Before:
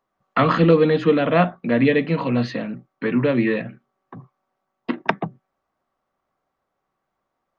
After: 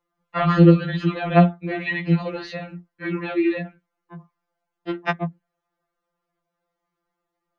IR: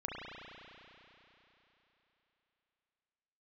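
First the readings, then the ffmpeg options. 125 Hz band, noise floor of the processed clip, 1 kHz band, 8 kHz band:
+3.5 dB, -82 dBFS, -2.0 dB, n/a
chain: -af "afftfilt=real='re*2.83*eq(mod(b,8),0)':imag='im*2.83*eq(mod(b,8),0)':win_size=2048:overlap=0.75"

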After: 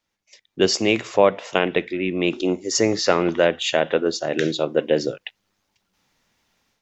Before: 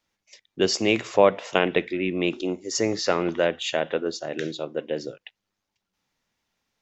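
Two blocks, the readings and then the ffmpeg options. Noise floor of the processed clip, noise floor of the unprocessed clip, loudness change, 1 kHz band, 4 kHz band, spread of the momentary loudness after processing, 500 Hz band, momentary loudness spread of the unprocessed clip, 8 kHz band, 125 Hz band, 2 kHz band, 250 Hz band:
-78 dBFS, -83 dBFS, +3.5 dB, +2.5 dB, +4.0 dB, 6 LU, +4.0 dB, 11 LU, n/a, +4.0 dB, +3.5 dB, +4.0 dB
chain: -af "dynaudnorm=f=320:g=3:m=11dB,volume=-1dB"

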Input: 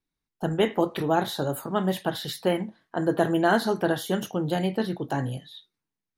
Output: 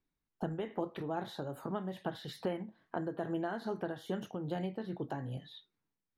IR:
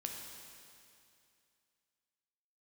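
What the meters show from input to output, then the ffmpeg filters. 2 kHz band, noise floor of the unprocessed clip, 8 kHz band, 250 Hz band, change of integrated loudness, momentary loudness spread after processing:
-16.0 dB, under -85 dBFS, -20.5 dB, -12.0 dB, -13.0 dB, 5 LU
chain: -af "lowpass=f=2.1k:p=1,acompressor=threshold=-38dB:ratio=3,tremolo=f=2.4:d=0.35,volume=1.5dB"

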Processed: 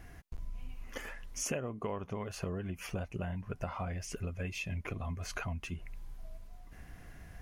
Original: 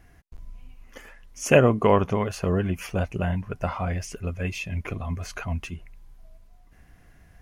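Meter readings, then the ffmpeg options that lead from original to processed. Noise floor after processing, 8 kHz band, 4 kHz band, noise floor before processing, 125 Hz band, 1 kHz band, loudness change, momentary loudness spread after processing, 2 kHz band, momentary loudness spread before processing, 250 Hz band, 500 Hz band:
-53 dBFS, -4.5 dB, -8.0 dB, -54 dBFS, -12.0 dB, -15.0 dB, -14.5 dB, 16 LU, -11.5 dB, 14 LU, -14.0 dB, -17.5 dB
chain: -af "acompressor=threshold=-38dB:ratio=8,volume=3dB"

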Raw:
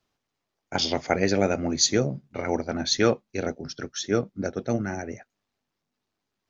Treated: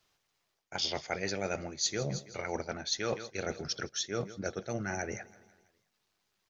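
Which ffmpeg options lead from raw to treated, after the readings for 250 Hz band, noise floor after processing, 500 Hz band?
-13.0 dB, -80 dBFS, -10.5 dB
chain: -af "tiltshelf=f=1.2k:g=-4,aecho=1:1:165|330|495|660:0.0668|0.0361|0.0195|0.0105,areverse,acompressor=threshold=-34dB:ratio=5,areverse,equalizer=f=260:t=o:w=0.28:g=-10.5,volume=3dB"

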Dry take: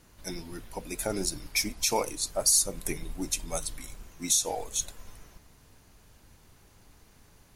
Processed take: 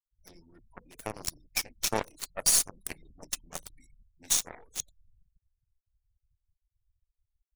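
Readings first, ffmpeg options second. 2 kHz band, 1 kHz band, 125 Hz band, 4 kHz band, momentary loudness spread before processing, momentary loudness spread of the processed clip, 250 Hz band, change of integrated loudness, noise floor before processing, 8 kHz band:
-2.5 dB, -4.5 dB, -6.5 dB, -2.5 dB, 18 LU, 20 LU, -9.0 dB, -1.0 dB, -59 dBFS, -2.5 dB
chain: -af "afftfilt=real='re*gte(hypot(re,im),0.0126)':imag='im*gte(hypot(re,im),0.0126)':win_size=1024:overlap=0.75,aeval=exprs='0.282*(cos(1*acos(clip(val(0)/0.282,-1,1)))-cos(1*PI/2))+0.00708*(cos(3*acos(clip(val(0)/0.282,-1,1)))-cos(3*PI/2))+0.0178*(cos(4*acos(clip(val(0)/0.282,-1,1)))-cos(4*PI/2))+0.0447*(cos(7*acos(clip(val(0)/0.282,-1,1)))-cos(7*PI/2))':c=same"

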